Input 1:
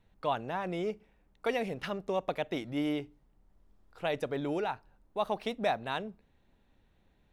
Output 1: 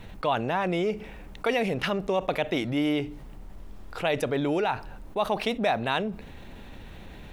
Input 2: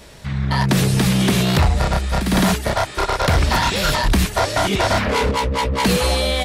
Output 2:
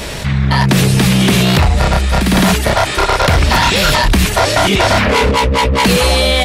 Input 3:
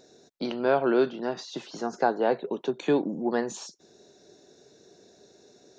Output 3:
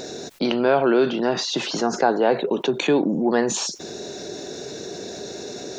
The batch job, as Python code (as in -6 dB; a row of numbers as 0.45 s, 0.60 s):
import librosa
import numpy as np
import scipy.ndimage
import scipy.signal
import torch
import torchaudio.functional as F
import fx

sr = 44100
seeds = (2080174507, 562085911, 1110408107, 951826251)

y = fx.peak_eq(x, sr, hz=2600.0, db=3.0, octaves=0.79)
y = fx.env_flatten(y, sr, amount_pct=50)
y = F.gain(torch.from_numpy(y), 3.5).numpy()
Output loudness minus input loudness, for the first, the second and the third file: +6.5 LU, +6.5 LU, +6.5 LU